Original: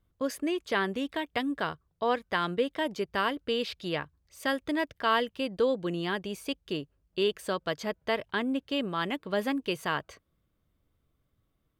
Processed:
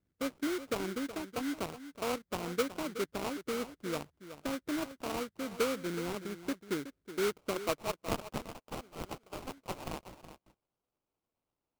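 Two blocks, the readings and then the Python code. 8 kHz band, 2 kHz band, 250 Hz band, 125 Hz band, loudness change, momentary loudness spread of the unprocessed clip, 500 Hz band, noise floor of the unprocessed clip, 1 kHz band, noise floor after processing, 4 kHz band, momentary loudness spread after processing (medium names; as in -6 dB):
+4.0 dB, -9.5 dB, -5.0 dB, -4.0 dB, -6.5 dB, 7 LU, -6.0 dB, -76 dBFS, -8.5 dB, under -85 dBFS, -8.5 dB, 10 LU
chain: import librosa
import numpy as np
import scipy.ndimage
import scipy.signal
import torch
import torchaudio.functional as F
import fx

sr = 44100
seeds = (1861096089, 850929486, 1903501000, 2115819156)

p1 = fx.filter_sweep_bandpass(x, sr, from_hz=280.0, to_hz=8000.0, start_s=7.52, end_s=8.51, q=0.75)
p2 = fx.rider(p1, sr, range_db=4, speed_s=2.0)
p3 = fx.hpss(p2, sr, part='harmonic', gain_db=-4)
p4 = fx.sample_hold(p3, sr, seeds[0], rate_hz=1800.0, jitter_pct=20)
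y = p4 + fx.echo_single(p4, sr, ms=371, db=-12.5, dry=0)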